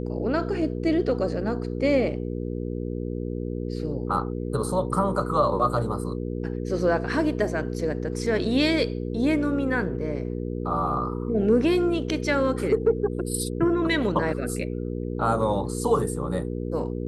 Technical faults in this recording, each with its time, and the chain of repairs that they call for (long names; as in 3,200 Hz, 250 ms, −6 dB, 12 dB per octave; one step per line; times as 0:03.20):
mains hum 60 Hz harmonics 8 −30 dBFS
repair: hum removal 60 Hz, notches 8